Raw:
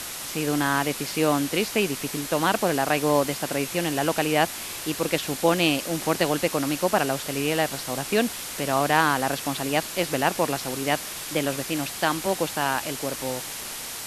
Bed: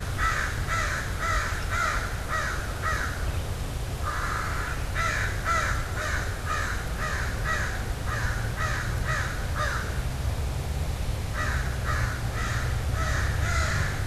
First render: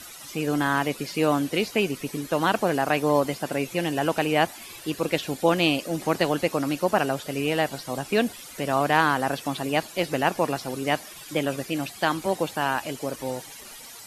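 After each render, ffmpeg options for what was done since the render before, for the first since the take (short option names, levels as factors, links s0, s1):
-af "afftdn=nr=14:nf=-35"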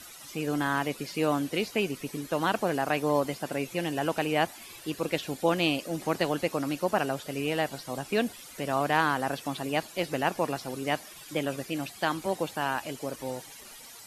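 -af "volume=0.596"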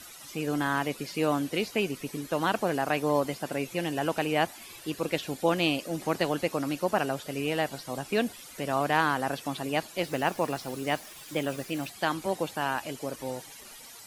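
-filter_complex "[0:a]asettb=1/sr,asplit=3[s0][s1][s2];[s0]atrim=end=10.054[s3];[s1]atrim=start=10.05:end=11.9,asetpts=PTS-STARTPTS,afade=t=in:d=0.004:c=qsin,afade=t=out:st=1.846:d=0.004:c=qsin,acrusher=bits=9:dc=4:mix=0:aa=0.000001[s4];[s2]atrim=start=11.896[s5];[s3][s4]acrossfade=d=0.004:c1=hsin:c2=qsin[s6];[s6][s5]acrossfade=d=0.004:c1=qsin:c2=hsin"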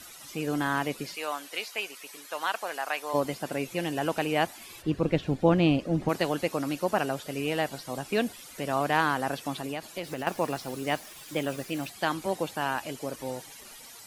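-filter_complex "[0:a]asplit=3[s0][s1][s2];[s0]afade=t=out:st=1.14:d=0.02[s3];[s1]highpass=830,afade=t=in:st=1.14:d=0.02,afade=t=out:st=3.13:d=0.02[s4];[s2]afade=t=in:st=3.13:d=0.02[s5];[s3][s4][s5]amix=inputs=3:normalize=0,asplit=3[s6][s7][s8];[s6]afade=t=out:st=4.81:d=0.02[s9];[s7]aemphasis=mode=reproduction:type=riaa,afade=t=in:st=4.81:d=0.02,afade=t=out:st=6.08:d=0.02[s10];[s8]afade=t=in:st=6.08:d=0.02[s11];[s9][s10][s11]amix=inputs=3:normalize=0,asettb=1/sr,asplit=3[s12][s13][s14];[s12]atrim=end=9.584[s15];[s13]atrim=start=9.58:end=10.27,asetpts=PTS-STARTPTS,afade=t=in:d=0.004:c=qsin,afade=t=out:st=0.686:d=0.004:c=qsin,acompressor=threshold=0.0355:ratio=6:attack=3.2:release=140:knee=1:detection=peak[s16];[s14]atrim=start=10.266[s17];[s15][s16]acrossfade=d=0.004:c1=hsin:c2=qsin[s18];[s18][s17]acrossfade=d=0.004:c1=qsin:c2=hsin"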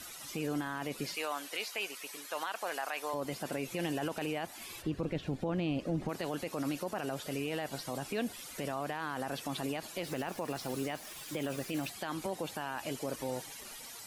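-af "acompressor=threshold=0.0398:ratio=4,alimiter=level_in=1.19:limit=0.0631:level=0:latency=1:release=13,volume=0.841"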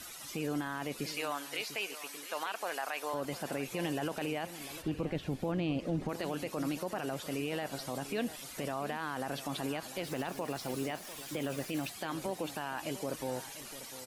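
-af "aecho=1:1:697:0.2"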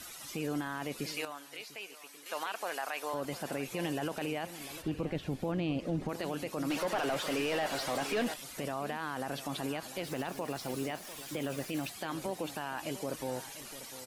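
-filter_complex "[0:a]asettb=1/sr,asplit=3[s0][s1][s2];[s0]atrim=end=6.704[s3];[s1]atrim=start=6.7:end=8.34,asetpts=PTS-STARTPTS,afade=t=in:d=0.004:c=qsin,afade=t=out:st=1.636:d=0.004:c=qsin,asplit=2[s4][s5];[s5]highpass=f=720:p=1,volume=11.2,asoftclip=type=tanh:threshold=0.0668[s6];[s4][s6]amix=inputs=2:normalize=0,lowpass=f=3000:p=1,volume=0.501[s7];[s2]atrim=start=8.336[s8];[s3][s7]acrossfade=d=0.004:c1=hsin:c2=qsin[s9];[s9][s8]acrossfade=d=0.004:c1=qsin:c2=hsin,asplit=3[s10][s11][s12];[s10]atrim=end=1.252[s13];[s11]atrim=start=1.248:end=2.262,asetpts=PTS-STARTPTS,volume=0.422[s14];[s12]atrim=start=2.258[s15];[s13][s14]acrossfade=d=0.004:c1=hsin:c2=hsin[s16];[s16][s15]acrossfade=d=0.004:c1=hsin:c2=hsin"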